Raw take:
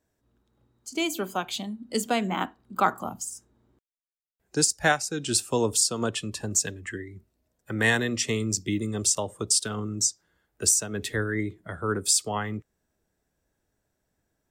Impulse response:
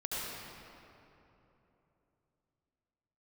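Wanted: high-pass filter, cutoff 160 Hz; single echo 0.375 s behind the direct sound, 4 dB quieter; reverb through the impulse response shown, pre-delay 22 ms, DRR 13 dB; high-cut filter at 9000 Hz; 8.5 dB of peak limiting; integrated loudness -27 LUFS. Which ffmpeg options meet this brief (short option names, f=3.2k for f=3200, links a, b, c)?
-filter_complex "[0:a]highpass=160,lowpass=9k,alimiter=limit=-16.5dB:level=0:latency=1,aecho=1:1:375:0.631,asplit=2[a][b];[1:a]atrim=start_sample=2205,adelay=22[c];[b][c]afir=irnorm=-1:irlink=0,volume=-17.5dB[d];[a][d]amix=inputs=2:normalize=0,volume=1.5dB"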